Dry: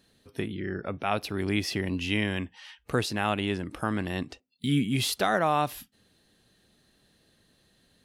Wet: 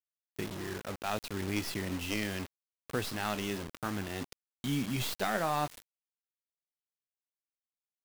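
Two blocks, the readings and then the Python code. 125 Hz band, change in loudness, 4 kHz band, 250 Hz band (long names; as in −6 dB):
−7.0 dB, −6.5 dB, −6.5 dB, −7.0 dB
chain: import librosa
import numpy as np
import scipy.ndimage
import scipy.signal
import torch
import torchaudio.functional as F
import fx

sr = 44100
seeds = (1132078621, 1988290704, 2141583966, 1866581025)

y = fx.tracing_dist(x, sr, depth_ms=0.13)
y = fx.chorus_voices(y, sr, voices=2, hz=0.71, base_ms=22, depth_ms=3.3, mix_pct=20)
y = fx.quant_dither(y, sr, seeds[0], bits=6, dither='none')
y = F.gain(torch.from_numpy(y), -5.0).numpy()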